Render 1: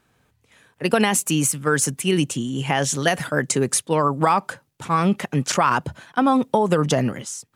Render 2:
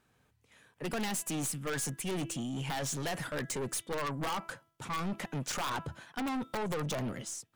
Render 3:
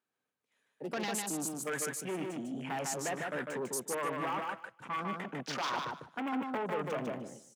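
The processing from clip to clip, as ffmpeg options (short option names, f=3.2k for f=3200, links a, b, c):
-af "bandreject=f=331.6:t=h:w=4,bandreject=f=663.2:t=h:w=4,bandreject=f=994.8:t=h:w=4,bandreject=f=1.3264k:t=h:w=4,bandreject=f=1.658k:t=h:w=4,bandreject=f=1.9896k:t=h:w=4,bandreject=f=2.3212k:t=h:w=4,bandreject=f=2.6528k:t=h:w=4,bandreject=f=2.9844k:t=h:w=4,bandreject=f=3.316k:t=h:w=4,bandreject=f=3.6476k:t=h:w=4,aeval=exprs='(mod(2.66*val(0)+1,2)-1)/2.66':c=same,aeval=exprs='(tanh(17.8*val(0)+0.2)-tanh(0.2))/17.8':c=same,volume=-7dB"
-filter_complex "[0:a]afwtdn=0.00794,highpass=250,asplit=2[a][b];[b]aecho=0:1:150|300|450:0.668|0.107|0.0171[c];[a][c]amix=inputs=2:normalize=0"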